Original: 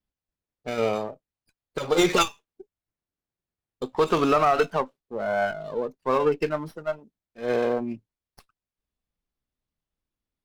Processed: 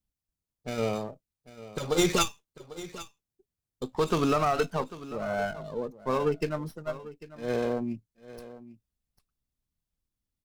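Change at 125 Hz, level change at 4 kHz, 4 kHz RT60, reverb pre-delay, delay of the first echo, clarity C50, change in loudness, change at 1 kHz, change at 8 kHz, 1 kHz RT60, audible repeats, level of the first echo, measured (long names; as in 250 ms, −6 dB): +2.0 dB, −2.5 dB, no reverb audible, no reverb audible, 796 ms, no reverb audible, −5.0 dB, −6.0 dB, +1.5 dB, no reverb audible, 1, −16.5 dB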